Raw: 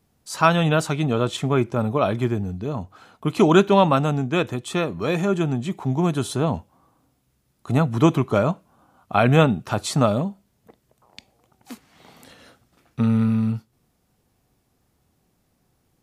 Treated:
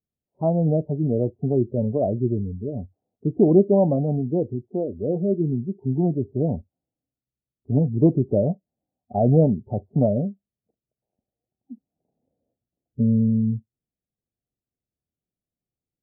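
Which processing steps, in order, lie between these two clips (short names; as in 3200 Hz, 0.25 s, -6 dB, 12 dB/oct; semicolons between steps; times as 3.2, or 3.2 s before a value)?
steep low-pass 720 Hz 48 dB/oct; spectral noise reduction 25 dB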